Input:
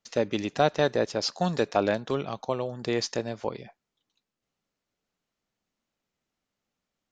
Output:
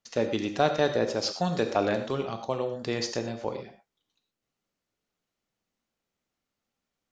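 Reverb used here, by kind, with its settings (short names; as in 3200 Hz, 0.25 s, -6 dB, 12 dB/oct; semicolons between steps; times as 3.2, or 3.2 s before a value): non-linear reverb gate 0.14 s flat, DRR 6 dB; gain -1.5 dB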